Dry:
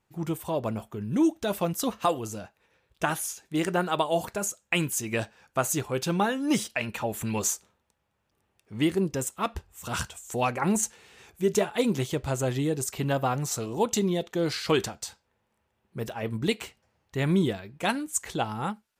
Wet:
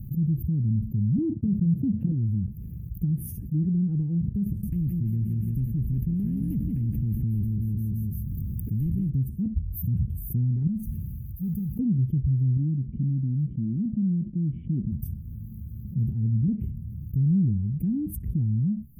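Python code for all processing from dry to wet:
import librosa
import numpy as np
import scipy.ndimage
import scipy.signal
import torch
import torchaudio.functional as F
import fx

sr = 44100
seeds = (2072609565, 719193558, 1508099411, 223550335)

y = fx.chain(x, sr, fx.overload_stage(gain_db=18.0),
    fx.leveller(passes=3),
    fx.highpass(hz=90.0, slope=24), at=(1.18, 2.12))
y = fx.chain(y, sr, fx.echo_feedback(ms=170, feedback_pct=42, wet_db=-14),
    fx.spectral_comp(ratio=4.0), at=(4.46, 9.1))
y = fx.chain(y, sr, fx.tone_stack(knobs='6-0-2'),
    fx.mod_noise(seeds[0], snr_db=19),
    fx.sustainer(db_per_s=76.0), at=(10.67, 11.79))
y = fx.chain(y, sr, fx.formant_cascade(vowel='i'),
    fx.comb(ms=5.5, depth=0.36), at=(12.57, 14.92))
y = fx.env_lowpass_down(y, sr, base_hz=950.0, full_db=-20.5)
y = scipy.signal.sosfilt(scipy.signal.cheby2(4, 60, [570.0, 7700.0], 'bandstop', fs=sr, output='sos'), y)
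y = fx.env_flatten(y, sr, amount_pct=70)
y = F.gain(torch.from_numpy(y), 5.0).numpy()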